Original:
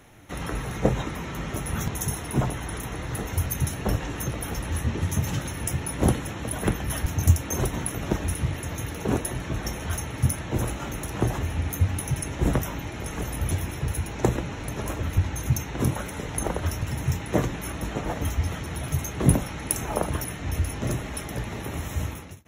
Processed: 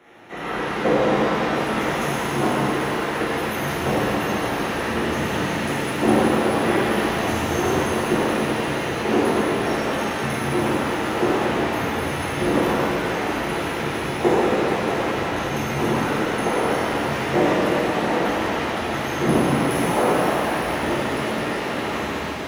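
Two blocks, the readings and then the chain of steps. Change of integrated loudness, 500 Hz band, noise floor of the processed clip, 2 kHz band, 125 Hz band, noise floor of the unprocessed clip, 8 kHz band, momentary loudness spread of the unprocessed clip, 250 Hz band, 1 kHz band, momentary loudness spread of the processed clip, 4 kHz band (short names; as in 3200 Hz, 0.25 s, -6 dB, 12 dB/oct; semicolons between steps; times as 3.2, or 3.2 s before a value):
+6.5 dB, +12.0 dB, -26 dBFS, +11.5 dB, -3.5 dB, -36 dBFS, -2.5 dB, 8 LU, +8.0 dB, +12.5 dB, 5 LU, +9.5 dB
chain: three-band isolator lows -23 dB, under 200 Hz, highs -16 dB, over 3600 Hz; shimmer reverb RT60 3.7 s, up +7 st, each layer -8 dB, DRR -11 dB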